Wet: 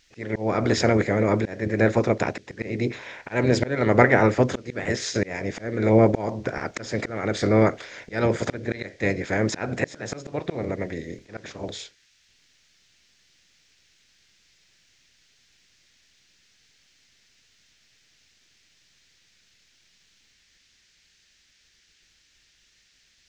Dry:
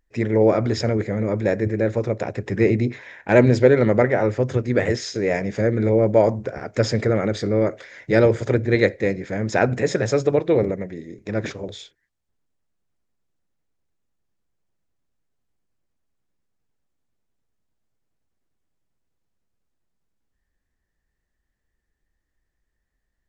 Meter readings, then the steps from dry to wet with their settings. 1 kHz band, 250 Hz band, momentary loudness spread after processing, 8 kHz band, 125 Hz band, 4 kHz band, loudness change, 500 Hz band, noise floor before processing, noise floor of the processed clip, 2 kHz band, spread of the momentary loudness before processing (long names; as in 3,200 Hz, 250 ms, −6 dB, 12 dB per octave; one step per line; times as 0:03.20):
+1.0 dB, −2.5 dB, 16 LU, can't be measured, −4.0 dB, 0.0 dB, −3.5 dB, −5.0 dB, −77 dBFS, −63 dBFS, 0.0 dB, 11 LU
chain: ceiling on every frequency bin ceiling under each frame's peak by 12 dB
volume swells 389 ms
noise in a band 1,600–6,500 Hz −65 dBFS
level +2 dB